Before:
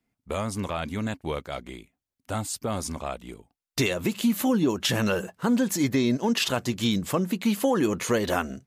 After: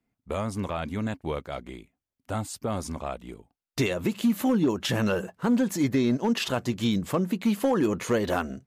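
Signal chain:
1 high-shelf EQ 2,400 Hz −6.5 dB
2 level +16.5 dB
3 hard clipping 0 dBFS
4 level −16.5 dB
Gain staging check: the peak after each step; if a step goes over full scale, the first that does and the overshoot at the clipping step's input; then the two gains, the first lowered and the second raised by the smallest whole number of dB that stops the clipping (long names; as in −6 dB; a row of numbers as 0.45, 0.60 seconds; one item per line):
−13.5, +3.0, 0.0, −16.5 dBFS
step 2, 3.0 dB
step 2 +13.5 dB, step 4 −13.5 dB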